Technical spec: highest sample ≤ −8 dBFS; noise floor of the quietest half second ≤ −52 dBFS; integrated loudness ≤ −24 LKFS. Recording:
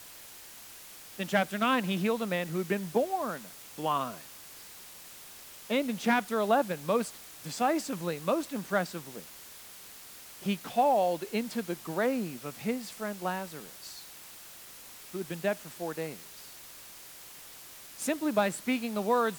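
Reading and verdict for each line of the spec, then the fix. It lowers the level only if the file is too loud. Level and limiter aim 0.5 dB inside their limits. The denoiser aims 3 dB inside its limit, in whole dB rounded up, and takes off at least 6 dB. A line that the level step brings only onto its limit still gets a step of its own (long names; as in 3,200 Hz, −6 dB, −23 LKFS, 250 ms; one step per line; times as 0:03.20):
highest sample −13.0 dBFS: in spec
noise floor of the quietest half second −49 dBFS: out of spec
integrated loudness −31.0 LKFS: in spec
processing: broadband denoise 6 dB, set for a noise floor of −49 dBFS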